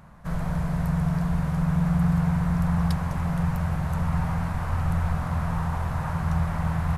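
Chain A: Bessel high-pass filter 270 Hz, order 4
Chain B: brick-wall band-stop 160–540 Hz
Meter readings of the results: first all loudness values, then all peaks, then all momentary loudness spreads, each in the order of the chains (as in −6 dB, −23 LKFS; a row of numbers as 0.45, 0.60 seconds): −34.0, −29.0 LKFS; −20.5, −15.0 dBFS; 4, 2 LU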